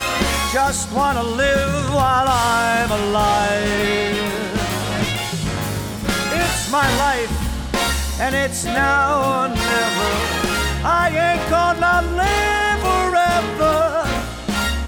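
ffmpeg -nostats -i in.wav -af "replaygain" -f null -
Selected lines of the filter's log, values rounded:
track_gain = +0.5 dB
track_peak = 0.385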